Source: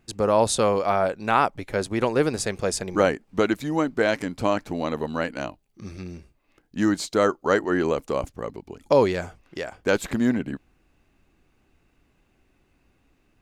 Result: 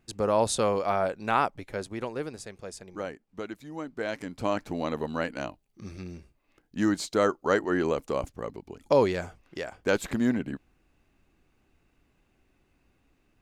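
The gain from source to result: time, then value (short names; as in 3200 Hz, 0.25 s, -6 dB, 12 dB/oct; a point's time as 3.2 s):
1.39 s -4.5 dB
2.5 s -15.5 dB
3.65 s -15.5 dB
4.64 s -3.5 dB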